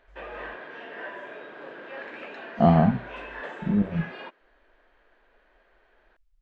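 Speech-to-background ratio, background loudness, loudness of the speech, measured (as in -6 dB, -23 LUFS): 16.0 dB, -39.5 LUFS, -23.5 LUFS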